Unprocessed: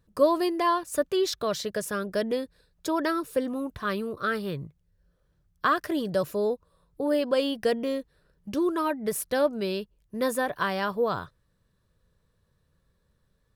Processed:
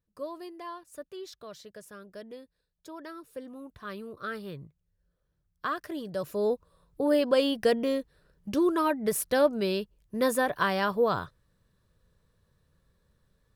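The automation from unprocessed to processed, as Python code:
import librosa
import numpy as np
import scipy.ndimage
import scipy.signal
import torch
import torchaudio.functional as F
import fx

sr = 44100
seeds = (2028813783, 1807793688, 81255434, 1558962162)

y = fx.gain(x, sr, db=fx.line((3.03, -16.5), (4.24, -8.0), (6.13, -8.0), (6.53, 1.0)))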